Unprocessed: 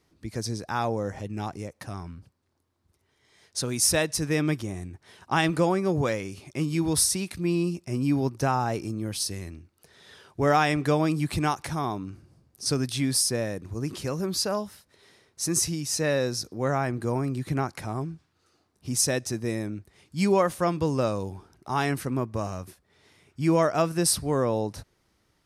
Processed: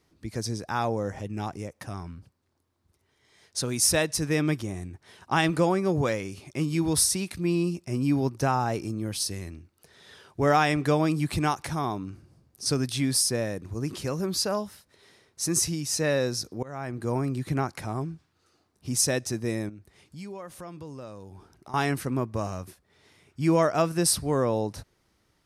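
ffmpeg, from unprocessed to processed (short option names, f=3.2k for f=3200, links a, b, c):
-filter_complex "[0:a]asettb=1/sr,asplit=3[a][b][c];[a]atrim=end=0.464[d];[b]atrim=start=0.46:end=1.97,asetpts=PTS-STARTPTS,afade=t=in:d=0.004:c=qsin,afade=t=out:st=1.506:d=0.004:c=qsin,bandreject=f=4.2k:w=12[e];[c]atrim=start=1.966[f];[d][e]acrossfade=d=0.004:c1=hsin:c2=qsin[g];[g][f]acrossfade=d=0.004:c1=qsin:c2=hsin,asettb=1/sr,asplit=3[h][i][j];[h]atrim=end=19.694[k];[i]atrim=start=19.69:end=21.74,asetpts=PTS-STARTPTS,afade=t=in:d=0.004:c=qsin,afade=t=out:st=2.046:d=0.004:c=qsin,acompressor=threshold=-43dB:ratio=3:attack=3.2:release=140:knee=1:detection=peak[l];[j]atrim=start=21.736[m];[k][l]acrossfade=d=0.004:c1=hsin:c2=qsin[n];[n][m]acrossfade=d=0.004:c1=qsin:c2=hsin,asplit=2[o][p];[o]atrim=end=16.63,asetpts=PTS-STARTPTS,afade=t=out:st=16.626:d=0.004:c=hsin:silence=0.0630957[q];[p]atrim=start=16.63,asetpts=PTS-STARTPTS,afade=t=in:d=0.52:silence=0.0630957[r];[q][r]concat=n=2:v=0:a=1"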